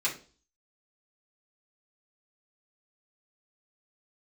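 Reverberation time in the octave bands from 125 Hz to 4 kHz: 0.45, 0.50, 0.45, 0.35, 0.30, 0.40 seconds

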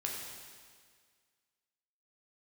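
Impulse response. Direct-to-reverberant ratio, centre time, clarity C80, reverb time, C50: −2.0 dB, 83 ms, 3.0 dB, 1.8 s, 1.5 dB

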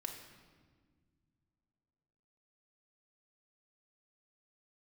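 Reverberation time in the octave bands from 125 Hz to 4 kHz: 3.2, 2.9, 1.9, 1.5, 1.3, 1.2 seconds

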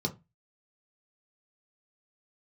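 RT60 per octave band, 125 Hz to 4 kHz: 0.35, 0.30, 0.25, 0.20, 0.20, 0.15 seconds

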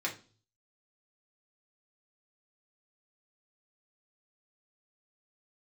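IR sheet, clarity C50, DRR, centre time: 12.0 dB, −2.5 dB, 15 ms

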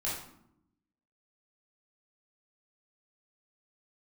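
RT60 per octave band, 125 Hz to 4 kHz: 1.1, 1.2, 0.80, 0.70, 0.55, 0.45 seconds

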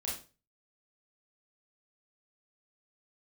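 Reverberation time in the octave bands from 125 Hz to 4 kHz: 0.50, 0.35, 0.35, 0.30, 0.30, 0.30 seconds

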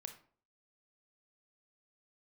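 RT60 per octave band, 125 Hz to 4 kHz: 0.50, 0.50, 0.50, 0.45, 0.35, 0.30 seconds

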